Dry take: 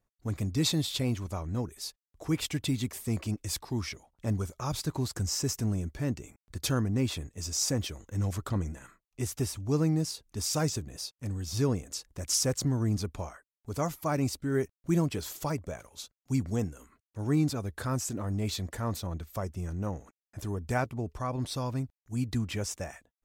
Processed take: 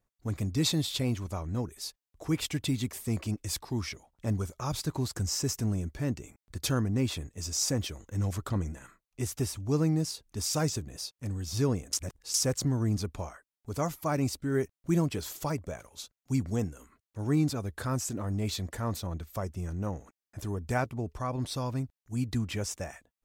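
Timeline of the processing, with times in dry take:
0:11.93–0:12.34: reverse

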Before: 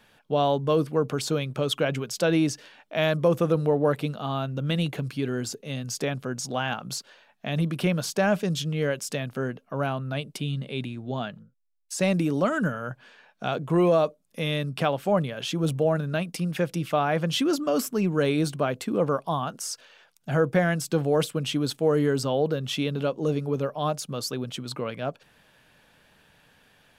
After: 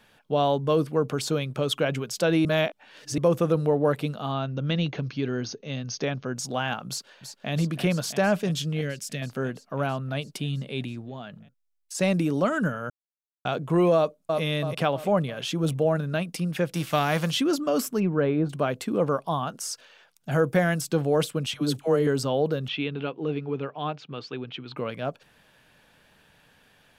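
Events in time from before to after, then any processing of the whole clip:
0:02.45–0:03.18: reverse
0:04.32–0:06.36: linear-phase brick-wall low-pass 6,600 Hz
0:06.88–0:07.52: delay throw 330 ms, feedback 80%, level −8.5 dB
0:08.81–0:09.22: drawn EQ curve 180 Hz 0 dB, 990 Hz −14 dB, 1,900 Hz −2 dB
0:11.01–0:11.95: downward compressor 3 to 1, threshold −36 dBFS
0:12.90–0:13.45: silence
0:13.96–0:14.41: delay throw 330 ms, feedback 45%, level −3.5 dB
0:16.74–0:17.30: spectral envelope flattened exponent 0.6
0:17.99–0:18.49: low-pass filter 2,900 Hz → 1,100 Hz
0:20.31–0:20.81: high-shelf EQ 9,100 Hz +11.5 dB
0:21.46–0:22.07: all-pass dispersion lows, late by 77 ms, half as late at 630 Hz
0:22.68–0:24.77: loudspeaker in its box 150–3,500 Hz, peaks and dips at 210 Hz −10 dB, 570 Hz −10 dB, 1,100 Hz −3 dB, 2,500 Hz +4 dB

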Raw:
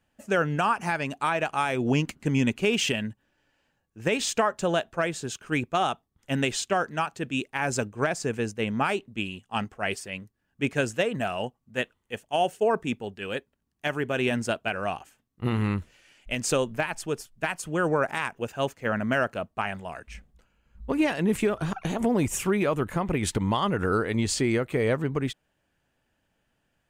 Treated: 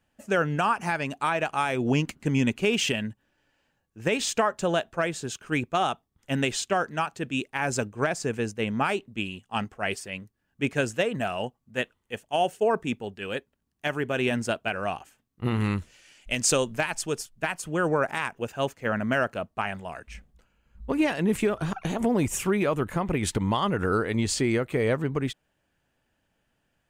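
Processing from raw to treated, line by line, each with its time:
0:15.60–0:17.29: parametric band 6,800 Hz +7 dB 2 octaves

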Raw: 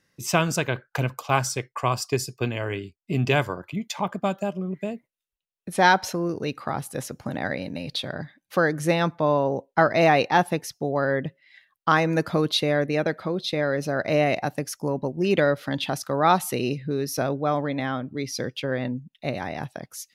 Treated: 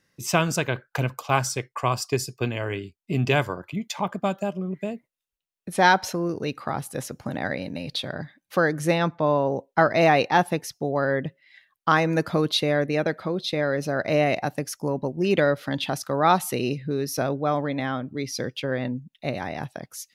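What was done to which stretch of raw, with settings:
0:08.98–0:09.47: high-frequency loss of the air 59 metres

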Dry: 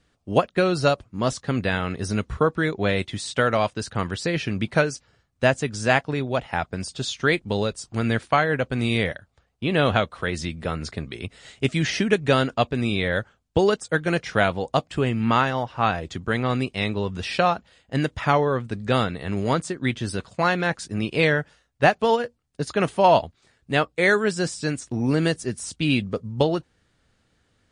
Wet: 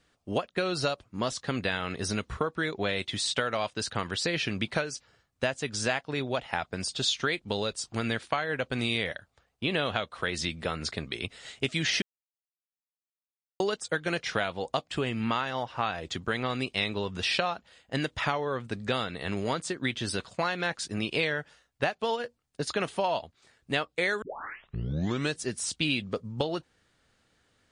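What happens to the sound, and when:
0:12.02–0:13.60: silence
0:24.22: tape start 1.16 s
whole clip: low-shelf EQ 270 Hz −7.5 dB; downward compressor 6 to 1, threshold −26 dBFS; dynamic equaliser 3,700 Hz, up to +5 dB, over −47 dBFS, Q 1.2

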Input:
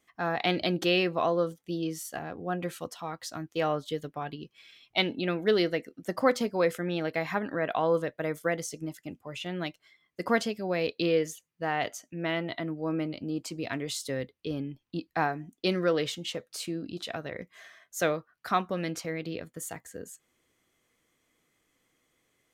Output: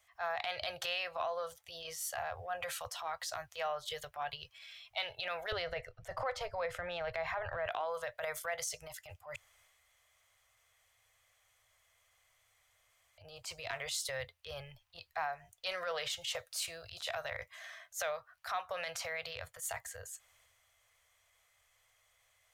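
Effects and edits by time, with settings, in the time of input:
0:05.52–0:07.66: RIAA equalisation playback
0:09.36–0:13.18: fill with room tone
0:16.21–0:17.37: high-shelf EQ 5,700 Hz +6 dB
whole clip: Chebyshev band-stop filter 100–620 Hz, order 3; transient designer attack −10 dB, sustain +4 dB; downward compressor 6 to 1, threshold −37 dBFS; level +3 dB

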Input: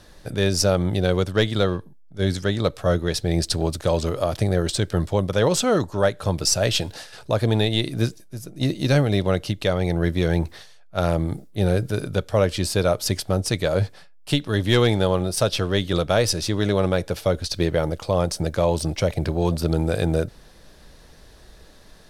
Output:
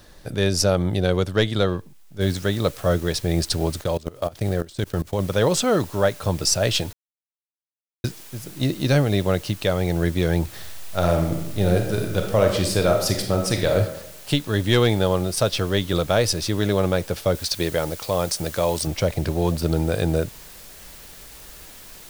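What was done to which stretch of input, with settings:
0:02.21: noise floor change −63 dB −44 dB
0:03.82–0:05.20: output level in coarse steps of 22 dB
0:06.93–0:08.04: silence
0:10.44–0:13.76: thrown reverb, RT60 0.83 s, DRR 3 dB
0:17.35–0:18.87: spectral tilt +1.5 dB per octave

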